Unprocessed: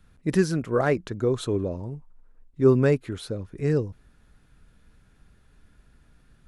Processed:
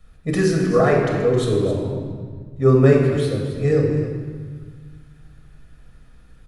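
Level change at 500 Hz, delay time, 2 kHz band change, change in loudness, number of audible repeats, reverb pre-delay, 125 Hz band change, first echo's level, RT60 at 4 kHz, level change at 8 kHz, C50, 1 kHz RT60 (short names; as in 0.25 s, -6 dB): +6.5 dB, 0.266 s, +6.0 dB, +6.0 dB, 1, 4 ms, +8.0 dB, -12.5 dB, 1.3 s, n/a, 2.0 dB, 1.5 s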